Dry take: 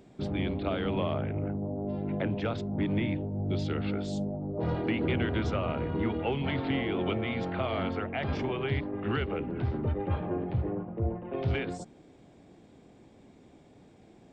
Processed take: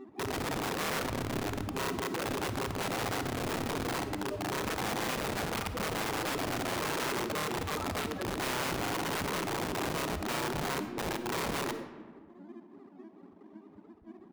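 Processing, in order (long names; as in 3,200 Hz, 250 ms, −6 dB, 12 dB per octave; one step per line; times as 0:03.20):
running median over 9 samples
dynamic equaliser 2,100 Hz, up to +4 dB, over −49 dBFS, Q 0.99
phaser with its sweep stopped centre 690 Hz, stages 6
in parallel at +2 dB: downward compressor 4 to 1, threshold −49 dBFS, peak gain reduction 18 dB
on the sum: spectral peaks only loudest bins 1
leveller curve on the samples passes 3
pitch-shifted copies added −7 semitones −3 dB, −5 semitones −8 dB, +12 semitones −16 dB
wrap-around overflow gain 28.5 dB
low-shelf EQ 68 Hz −9.5 dB
on a send at −9 dB: convolution reverb RT60 1.4 s, pre-delay 10 ms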